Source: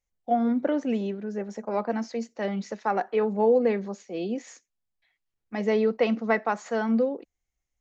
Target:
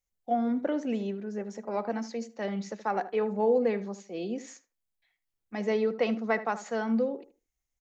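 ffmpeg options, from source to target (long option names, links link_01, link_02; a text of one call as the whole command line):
ffmpeg -i in.wav -filter_complex "[0:a]highshelf=frequency=6400:gain=7,asplit=2[link_01][link_02];[link_02]adelay=76,lowpass=frequency=1600:poles=1,volume=-12.5dB,asplit=2[link_03][link_04];[link_04]adelay=76,lowpass=frequency=1600:poles=1,volume=0.21,asplit=2[link_05][link_06];[link_06]adelay=76,lowpass=frequency=1600:poles=1,volume=0.21[link_07];[link_03][link_05][link_07]amix=inputs=3:normalize=0[link_08];[link_01][link_08]amix=inputs=2:normalize=0,volume=-4dB" out.wav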